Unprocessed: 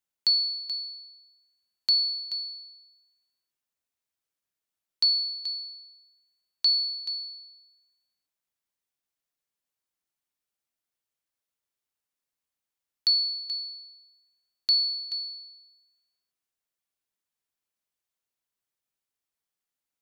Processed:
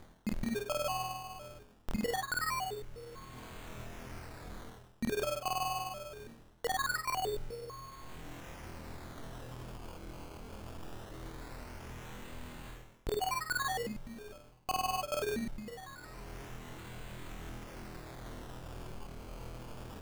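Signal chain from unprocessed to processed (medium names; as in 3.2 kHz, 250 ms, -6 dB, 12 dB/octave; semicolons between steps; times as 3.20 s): tilt EQ -4 dB/octave; in parallel at -3 dB: upward compressor, threshold -37 dBFS; on the sum: flutter echo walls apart 4.2 m, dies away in 0.69 s; reverberation RT60 2.9 s, pre-delay 4 ms, DRR 8 dB; reverse; compression 12:1, threshold -46 dBFS, peak gain reduction 23 dB; reverse; decimation with a swept rate 16×, swing 100% 0.22 Hz; trim +14 dB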